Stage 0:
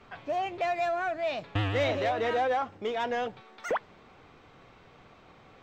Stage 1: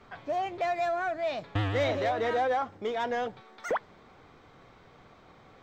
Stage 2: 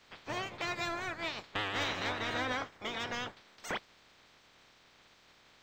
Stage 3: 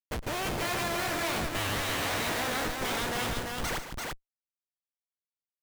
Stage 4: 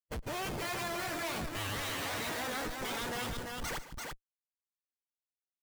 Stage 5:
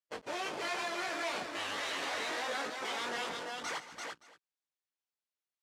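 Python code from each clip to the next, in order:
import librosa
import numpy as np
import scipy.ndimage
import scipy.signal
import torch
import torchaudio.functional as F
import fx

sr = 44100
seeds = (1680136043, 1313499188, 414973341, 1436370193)

y1 = fx.peak_eq(x, sr, hz=2700.0, db=-6.5, octaves=0.3)
y2 = fx.spec_clip(y1, sr, under_db=25)
y2 = y2 * 10.0 ** (-7.0 / 20.0)
y3 = fx.schmitt(y2, sr, flips_db=-48.0)
y3 = fx.echo_multitap(y3, sr, ms=(110, 147, 341), db=(-15.5, -11.5, -3.5))
y3 = y3 * 10.0 ** (7.0 / 20.0)
y4 = fx.bin_expand(y3, sr, power=1.5)
y4 = 10.0 ** (-32.5 / 20.0) * np.tanh(y4 / 10.0 ** (-32.5 / 20.0))
y5 = fx.chorus_voices(y4, sr, voices=2, hz=0.74, base_ms=20, depth_ms=2.8, mix_pct=40)
y5 = fx.bandpass_edges(y5, sr, low_hz=370.0, high_hz=6500.0)
y5 = y5 + 10.0 ** (-17.0 / 20.0) * np.pad(y5, (int(232 * sr / 1000.0), 0))[:len(y5)]
y5 = y5 * 10.0 ** (4.0 / 20.0)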